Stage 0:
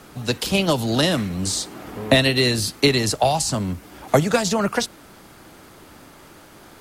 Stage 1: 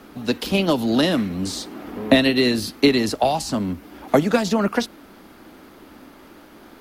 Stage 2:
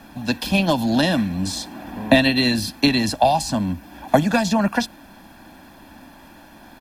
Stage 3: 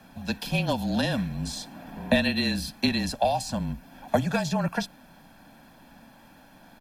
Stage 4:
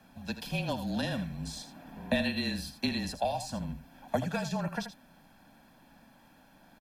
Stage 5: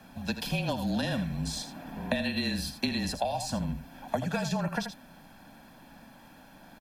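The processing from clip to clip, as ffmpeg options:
-af "equalizer=f=125:t=o:w=1:g=-9,equalizer=f=250:t=o:w=1:g=8,equalizer=f=8k:t=o:w=1:g=-9,volume=-1dB"
-af "aecho=1:1:1.2:0.74"
-af "afreqshift=-31,volume=-7.5dB"
-af "aecho=1:1:81:0.282,volume=-7dB"
-af "acompressor=threshold=-33dB:ratio=5,volume=6.5dB"

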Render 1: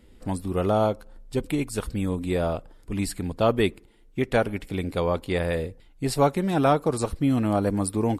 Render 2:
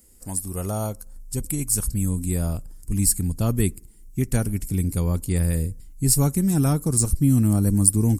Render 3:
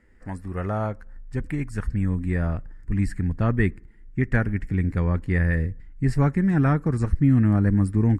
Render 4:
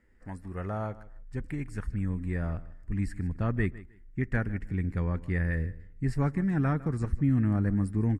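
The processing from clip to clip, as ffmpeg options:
-af "asubboost=boost=9.5:cutoff=200,aexciter=amount=7:drive=9.6:freq=5.4k,volume=-7dB"
-af "lowpass=f=1.8k:t=q:w=5.9"
-af "aecho=1:1:155|310:0.119|0.025,volume=-7dB"

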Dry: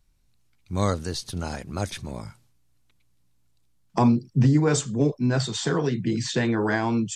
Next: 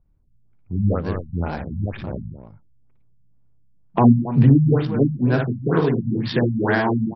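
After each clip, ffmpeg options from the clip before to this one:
-af "aecho=1:1:58.31|271.1:0.631|0.282,adynamicsmooth=sensitivity=5:basefreq=870,afftfilt=real='re*lt(b*sr/1024,220*pow(5800/220,0.5+0.5*sin(2*PI*2.1*pts/sr)))':imag='im*lt(b*sr/1024,220*pow(5800/220,0.5+0.5*sin(2*PI*2.1*pts/sr)))':win_size=1024:overlap=0.75,volume=4dB"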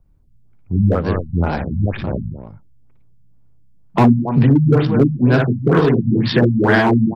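-filter_complex "[0:a]acrossover=split=370|1300[a][b][c];[a]alimiter=limit=-13dB:level=0:latency=1:release=381[d];[b]asoftclip=type=hard:threshold=-22.5dB[e];[d][e][c]amix=inputs=3:normalize=0,volume=7dB"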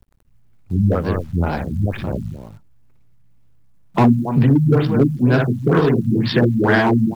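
-af "acrusher=bits=9:dc=4:mix=0:aa=0.000001,volume=-1.5dB"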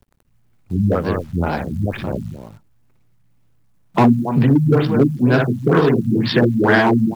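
-af "lowshelf=f=96:g=-9,volume=2dB"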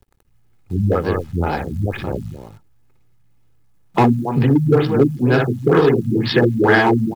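-af "aecho=1:1:2.4:0.35"

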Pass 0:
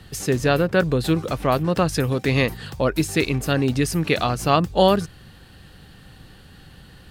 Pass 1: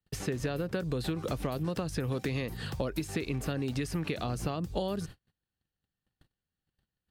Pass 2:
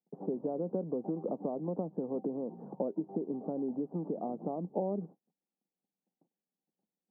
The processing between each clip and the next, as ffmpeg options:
-filter_complex "[0:a]acompressor=threshold=-21dB:ratio=16,agate=range=-43dB:threshold=-39dB:ratio=16:detection=peak,acrossover=split=560|3500[a][b][c];[a]acompressor=threshold=-29dB:ratio=4[d];[b]acompressor=threshold=-39dB:ratio=4[e];[c]acompressor=threshold=-45dB:ratio=4[f];[d][e][f]amix=inputs=3:normalize=0,volume=-1.5dB"
-af "asuperpass=centerf=400:order=12:qfactor=0.56"

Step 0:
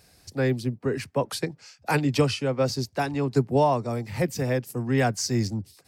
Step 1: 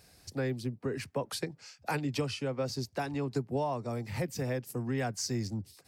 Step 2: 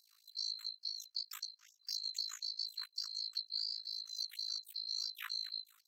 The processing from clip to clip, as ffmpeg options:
-af "acompressor=threshold=-30dB:ratio=2.5,volume=-2.5dB"
-af "afftfilt=real='real(if(lt(b,736),b+184*(1-2*mod(floor(b/184),2)),b),0)':imag='imag(if(lt(b,736),b+184*(1-2*mod(floor(b/184),2)),b),0)':win_size=2048:overlap=0.75,tremolo=f=54:d=0.947,afftfilt=real='re*gte(b*sr/1024,960*pow(4000/960,0.5+0.5*sin(2*PI*4.1*pts/sr)))':imag='im*gte(b*sr/1024,960*pow(4000/960,0.5+0.5*sin(2*PI*4.1*pts/sr)))':win_size=1024:overlap=0.75,volume=-4.5dB"

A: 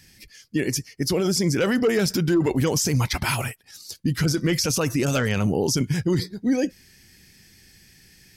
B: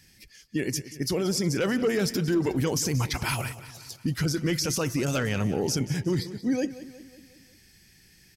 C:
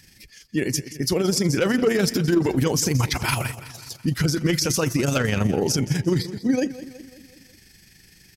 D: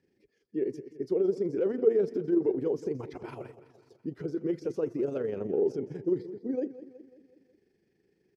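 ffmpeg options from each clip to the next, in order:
-af "aecho=1:1:182|364|546|728|910:0.178|0.096|0.0519|0.028|0.0151,volume=-4.5dB"
-af "tremolo=f=24:d=0.462,volume=7dB"
-af "bandpass=f=410:t=q:w=4.3:csg=0"

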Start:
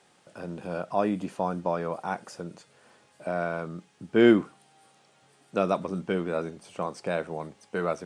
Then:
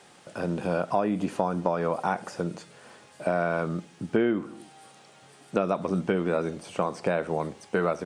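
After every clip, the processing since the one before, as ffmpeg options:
-filter_complex "[0:a]acrossover=split=2900[a][b];[b]acompressor=threshold=-51dB:ratio=4:attack=1:release=60[c];[a][c]amix=inputs=2:normalize=0,asplit=2[d][e];[e]adelay=75,lowpass=f=1k:p=1,volume=-21dB,asplit=2[f][g];[g]adelay=75,lowpass=f=1k:p=1,volume=0.51,asplit=2[h][i];[i]adelay=75,lowpass=f=1k:p=1,volume=0.51,asplit=2[j][k];[k]adelay=75,lowpass=f=1k:p=1,volume=0.51[l];[d][f][h][j][l]amix=inputs=5:normalize=0,acompressor=threshold=-29dB:ratio=8,volume=8dB"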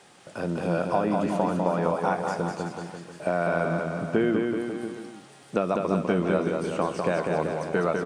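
-af "aecho=1:1:200|380|542|687.8|819:0.631|0.398|0.251|0.158|0.1"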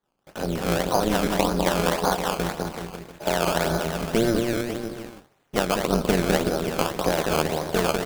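-af "agate=range=-33dB:threshold=-39dB:ratio=3:detection=peak,acrusher=samples=16:mix=1:aa=0.000001:lfo=1:lforange=16:lforate=1.8,tremolo=f=230:d=0.889,volume=6dB"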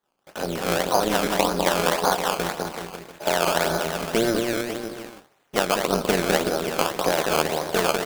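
-af "lowshelf=f=230:g=-11.5,volume=3dB"

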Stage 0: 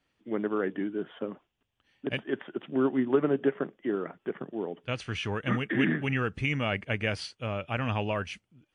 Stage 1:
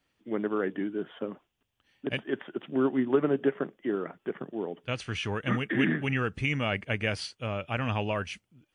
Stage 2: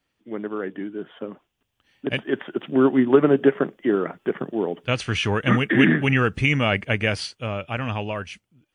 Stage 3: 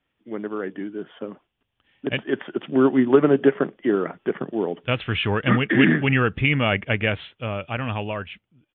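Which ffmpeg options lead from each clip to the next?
-af "highshelf=f=6.5k:g=5"
-af "dynaudnorm=f=310:g=13:m=11.5dB"
-af "aresample=8000,aresample=44100"

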